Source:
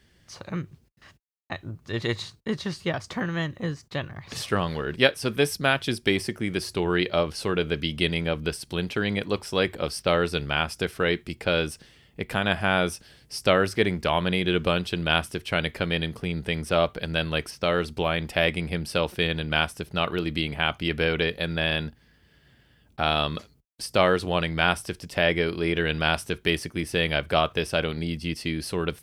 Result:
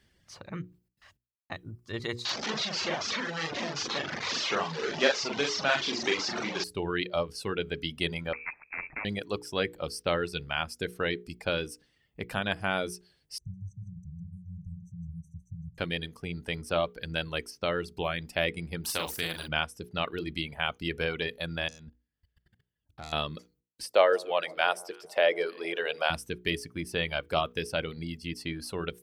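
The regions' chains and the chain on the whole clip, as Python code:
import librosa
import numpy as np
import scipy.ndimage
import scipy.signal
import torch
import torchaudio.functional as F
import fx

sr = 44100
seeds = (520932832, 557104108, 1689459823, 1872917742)

y = fx.chain(x, sr, fx.delta_mod(bps=32000, step_db=-19.0),
    fx.highpass(hz=280.0, slope=12),
    fx.doubler(ms=43.0, db=-2.0), at=(2.25, 6.64))
y = fx.chain(y, sr, fx.median_filter(points=41),
    fx.freq_invert(carrier_hz=2500),
    fx.spectral_comp(ratio=2.0), at=(8.33, 9.05))
y = fx.chain(y, sr, fx.brickwall_bandstop(low_hz=180.0, high_hz=5800.0),
    fx.air_absorb(metres=210.0),
    fx.echo_single(ms=156, db=-8.0), at=(13.38, 15.78))
y = fx.chain(y, sr, fx.high_shelf(hz=9400.0, db=10.0),
    fx.doubler(ms=42.0, db=-4.5),
    fx.spectral_comp(ratio=2.0), at=(18.84, 19.48))
y = fx.chain(y, sr, fx.self_delay(depth_ms=0.14),
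    fx.low_shelf(hz=200.0, db=6.0),
    fx.level_steps(step_db=18), at=(21.68, 23.13))
y = fx.chain(y, sr, fx.highpass_res(hz=520.0, q=2.2),
    fx.echo_alternate(ms=148, hz=1100.0, feedback_pct=58, wet_db=-11), at=(23.83, 26.1))
y = fx.dereverb_blind(y, sr, rt60_s=1.1)
y = fx.hum_notches(y, sr, base_hz=60, count=8)
y = y * 10.0 ** (-5.0 / 20.0)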